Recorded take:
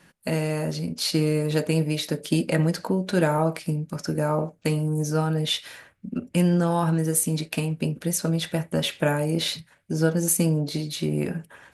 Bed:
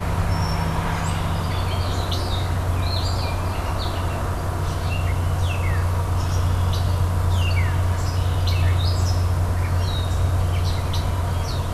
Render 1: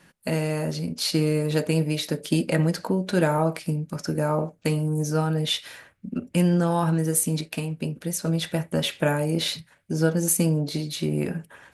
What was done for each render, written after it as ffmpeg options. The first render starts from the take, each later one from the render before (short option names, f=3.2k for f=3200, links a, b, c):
-filter_complex "[0:a]asplit=3[a][b][c];[a]atrim=end=7.412[d];[b]atrim=start=7.408:end=8.262,asetpts=PTS-STARTPTS,volume=-3dB[e];[c]atrim=start=8.258[f];[d][e]acrossfade=d=0.004:c1=hsin:c2=hsin[g];[g][f]acrossfade=d=0.004:c1=hsin:c2=hsin"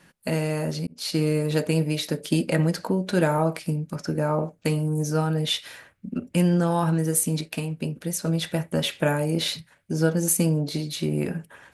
-filter_complex "[0:a]asettb=1/sr,asplit=3[a][b][c];[a]atrim=end=3.954[d];[b]atrim=start=3.95:end=4.43,asetpts=PTS-STARTPTS,afade=t=in:d=0.004:c=qsin,afade=t=out:st=0.476:d=0.004:c=qsin,highshelf=f=6.6k:g=-8[e];[c]atrim=start=4.426[f];[d][e]acrossfade=d=0.004:c1=hsin:c2=qsin[g];[g][f]acrossfade=d=0.004:c1=qsin:c2=hsin,asplit=2[h][i];[h]atrim=end=0.87,asetpts=PTS-STARTPTS,afade=t=out:st=0.866:d=0.004:c=hsin[j];[i]atrim=start=0.87,asetpts=PTS-STARTPTS,afade=t=in:d=0.46:c=qsin[k];[j][k]concat=n=2:v=0:a=1"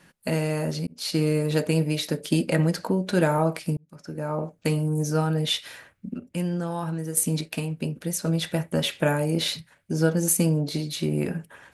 -filter_complex "[0:a]asplit=4[a][b][c][d];[a]atrim=end=3.77,asetpts=PTS-STARTPTS,afade=t=out:st=3.766:d=0.004:c=hsin[e];[b]atrim=start=3.77:end=6.162,asetpts=PTS-STARTPTS,afade=t=in:d=0.93[f];[c]atrim=start=6.158:end=7.172,asetpts=PTS-STARTPTS,volume=-7dB[g];[d]atrim=start=7.168[h];[e][f]concat=n=2:v=0:a=1[i];[i][g]acrossfade=d=0.004:c1=hsin:c2=hsin[j];[j][h]acrossfade=d=0.004:c1=hsin:c2=hsin"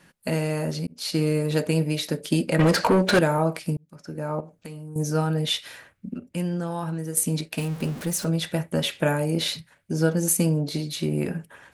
-filter_complex "[0:a]asettb=1/sr,asplit=3[a][b][c];[a]atrim=end=2.594[d];[b]atrim=start=2.59:end=3.19,asetpts=PTS-STARTPTS,afade=t=in:d=0.004:c=qsin,afade=t=out:st=0.596:d=0.004:c=qsin,asplit=2[e][f];[f]highpass=f=720:p=1,volume=25dB,asoftclip=type=tanh:threshold=-9dB[g];[e][g]amix=inputs=2:normalize=0,lowpass=f=3.6k:p=1,volume=-6dB[h];[c]atrim=start=3.186[i];[d][h]acrossfade=d=0.004:c1=hsin:c2=qsin[j];[j][i]acrossfade=d=0.004:c1=qsin:c2=hsin,asettb=1/sr,asplit=3[k][l][m];[k]atrim=end=4.404[n];[l]atrim=start=4.4:end=4.96,asetpts=PTS-STARTPTS,afade=t=in:d=0.004:c=qsin,afade=t=out:st=0.556:d=0.004:c=qsin,acompressor=threshold=-40dB:ratio=3:attack=3.2:release=140:knee=1:detection=peak[o];[m]atrim=start=4.956[p];[n][o]acrossfade=d=0.004:c1=hsin:c2=qsin[q];[q][p]acrossfade=d=0.004:c1=qsin:c2=hsin,asettb=1/sr,asplit=3[r][s][t];[r]atrim=end=7.584[u];[s]atrim=start=7.58:end=8.25,asetpts=PTS-STARTPTS,afade=t=in:d=0.004:c=qsin,afade=t=out:st=0.666:d=0.004:c=qsin,aeval=exprs='val(0)+0.5*0.0224*sgn(val(0))':c=same[v];[t]atrim=start=8.246[w];[u][v]acrossfade=d=0.004:c1=hsin:c2=qsin[x];[x][w]acrossfade=d=0.004:c1=qsin:c2=hsin"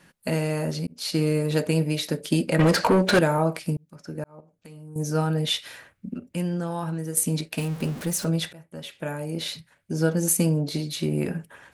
-filter_complex "[0:a]asplit=3[a][b][c];[a]atrim=end=4.24,asetpts=PTS-STARTPTS,afade=t=out:st=4.236:d=0.004:c=hsin[d];[b]atrim=start=4.24:end=8.53,asetpts=PTS-STARTPTS,afade=t=in:d=0.98,afade=t=out:st=4.286:d=0.004:c=hsin:silence=0.0707946[e];[c]atrim=start=8.53,asetpts=PTS-STARTPTS,afade=t=in:d=1.71:silence=0.0707946[f];[d][e][f]concat=n=3:v=0:a=1"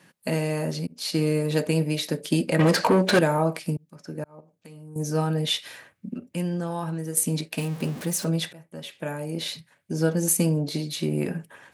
-af "highpass=110,bandreject=f=1.4k:w=16"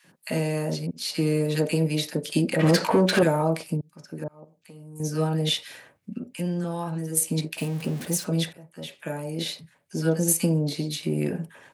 -filter_complex "[0:a]acrossover=split=1200[a][b];[a]adelay=40[c];[c][b]amix=inputs=2:normalize=0"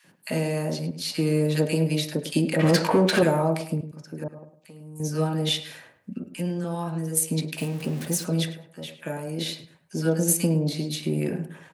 -filter_complex "[0:a]asplit=2[a][b];[b]adelay=105,lowpass=f=2.3k:p=1,volume=-11.5dB,asplit=2[c][d];[d]adelay=105,lowpass=f=2.3k:p=1,volume=0.33,asplit=2[e][f];[f]adelay=105,lowpass=f=2.3k:p=1,volume=0.33[g];[a][c][e][g]amix=inputs=4:normalize=0"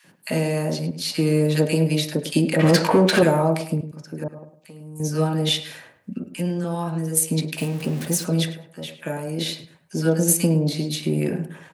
-af "volume=3.5dB"